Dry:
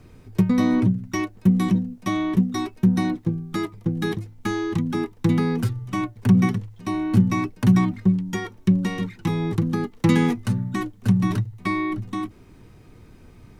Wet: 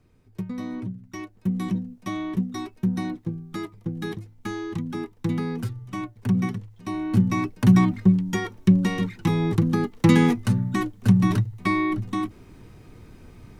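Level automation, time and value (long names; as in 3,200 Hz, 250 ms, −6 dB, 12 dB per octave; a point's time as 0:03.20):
0:00.92 −13 dB
0:01.72 −6 dB
0:06.59 −6 dB
0:07.82 +1.5 dB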